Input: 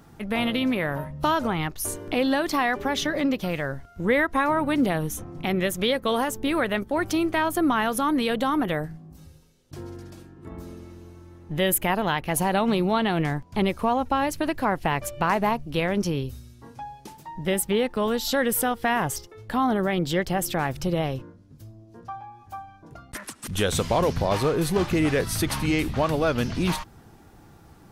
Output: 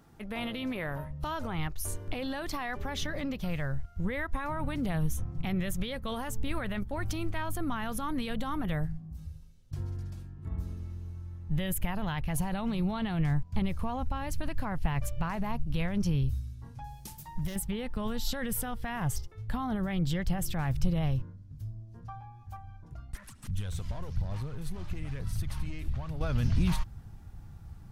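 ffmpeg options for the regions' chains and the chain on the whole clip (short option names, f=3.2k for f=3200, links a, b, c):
-filter_complex "[0:a]asettb=1/sr,asplit=3[a][b][c];[a]atrim=end=16.844[d];[b]atrim=start=16.84:end=17.56,asetpts=PTS-STARTPTS,afade=t=in:d=0.004:c=qsin,afade=t=out:st=0.716:d=0.004:c=qsin,acompressor=threshold=-26dB:ratio=6:attack=3.2:release=140:knee=1:detection=peak,asoftclip=type=hard:threshold=-27.5dB,aemphasis=mode=production:type=75kf[e];[c]atrim=start=17.556[f];[d][e]acrossfade=d=0.004:c1=hsin:c2=qsin[g];[g][f]acrossfade=d=0.004:c1=qsin:c2=hsin,asettb=1/sr,asplit=3[h][i][j];[h]atrim=end=22.564[k];[i]atrim=start=22.56:end=26.21,asetpts=PTS-STARTPTS,afade=t=in:d=0.004:c=qsin,afade=t=out:st=3.646:d=0.004:c=qsin,aphaser=in_gain=1:out_gain=1:delay=3.2:decay=0.33:speed=1.1:type=sinusoidal,acompressor=threshold=-39dB:ratio=2:attack=3.2:release=140:knee=1:detection=peak,aeval=exprs='(tanh(22.4*val(0)+0.35)-tanh(0.35))/22.4':c=same[l];[j]atrim=start=26.206[m];[k][l]acrossfade=d=0.004:c1=hsin:c2=qsin[n];[n][m]acrossfade=d=0.004:c1=qsin:c2=hsin,alimiter=limit=-17dB:level=0:latency=1:release=17,asubboost=boost=10:cutoff=110,volume=-8dB"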